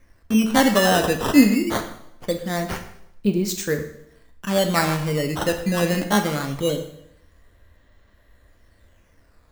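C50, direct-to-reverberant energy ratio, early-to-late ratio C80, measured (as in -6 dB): 9.5 dB, 5.5 dB, 12.0 dB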